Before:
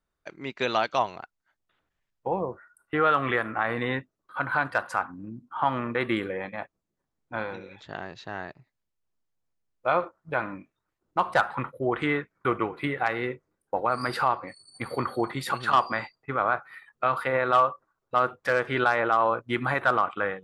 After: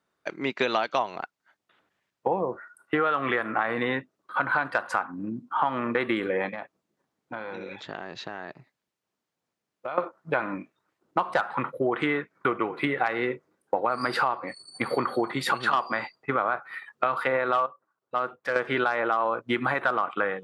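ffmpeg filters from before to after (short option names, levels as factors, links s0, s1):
-filter_complex "[0:a]asettb=1/sr,asplit=3[s0][s1][s2];[s0]atrim=end=6.504[s3];[s1]atrim=start=6.5:end=9.98,asetpts=PTS-STARTPTS,afade=t=in:d=0.004:c=qsin,afade=t=out:st=3.476:d=0.004:c=qsin,acompressor=threshold=0.0112:ratio=6:attack=3.2:release=140:knee=1:detection=peak[s4];[s2]atrim=start=9.976[s5];[s3][s4]acrossfade=d=0.004:c1=hsin:c2=qsin[s6];[s6][s5]acrossfade=d=0.004:c1=qsin:c2=hsin,asplit=3[s7][s8][s9];[s7]atrim=end=17.662[s10];[s8]atrim=start=17.658:end=18.562,asetpts=PTS-STARTPTS,volume=0.299[s11];[s9]atrim=start=18.558[s12];[s10][s11]acrossfade=d=0.004:c1=hsin:c2=hsin[s13];[s13][s12]acrossfade=d=0.004:c1=hsin:c2=hsin,highshelf=f=8500:g=-10,acompressor=threshold=0.0316:ratio=6,highpass=180,volume=2.66"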